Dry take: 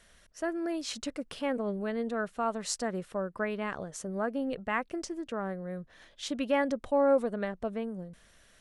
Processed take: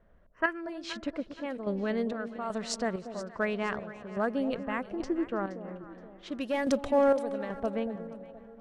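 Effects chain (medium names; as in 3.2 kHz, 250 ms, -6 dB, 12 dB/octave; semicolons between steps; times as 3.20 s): 6.28–6.91 s: waveshaping leveller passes 1; level-controlled noise filter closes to 850 Hz, open at -24.5 dBFS; square tremolo 1.2 Hz, depth 60%, duty 55%; in parallel at -11 dB: hard clipper -24 dBFS, distortion -13 dB; 4.67–5.25 s: on the sum: bass shelf 470 Hz +8.5 dB; tape echo 322 ms, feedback 52%, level -18 dB, low-pass 2.8 kHz; 0.33–0.61 s: time-frequency box 940–3200 Hz +12 dB; treble shelf 4 kHz +6.5 dB; on a send: echo whose repeats swap between lows and highs 236 ms, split 810 Hz, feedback 63%, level -10.5 dB; on the sum: tape noise reduction on one side only decoder only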